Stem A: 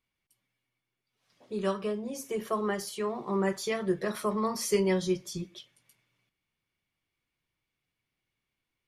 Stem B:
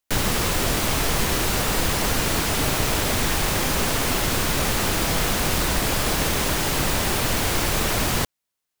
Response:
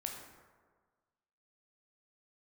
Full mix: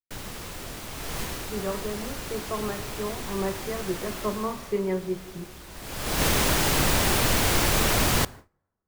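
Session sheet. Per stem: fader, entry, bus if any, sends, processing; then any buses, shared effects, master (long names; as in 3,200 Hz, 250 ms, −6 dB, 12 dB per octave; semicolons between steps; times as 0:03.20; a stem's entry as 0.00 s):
+0.5 dB, 0.00 s, send −7 dB, low-pass filter 1,700 Hz 12 dB per octave; amplitude modulation by smooth noise, depth 60%
0:00.91 −16.5 dB → 0:01.49 −4 dB → 0:04.22 −4 dB → 0:04.80 −13.5 dB → 0:05.70 −13.5 dB → 0:06.23 −1 dB, 0.00 s, send −15 dB, automatic ducking −14 dB, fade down 0.30 s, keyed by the first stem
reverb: on, RT60 1.5 s, pre-delay 12 ms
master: noise gate with hold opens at −35 dBFS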